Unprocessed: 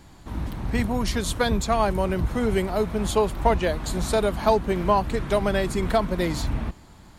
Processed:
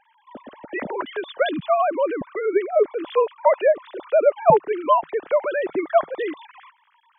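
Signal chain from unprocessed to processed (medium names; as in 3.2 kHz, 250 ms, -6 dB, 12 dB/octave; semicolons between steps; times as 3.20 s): formants replaced by sine waves; peaking EQ 590 Hz +6.5 dB 0.32 oct, from 4.50 s 160 Hz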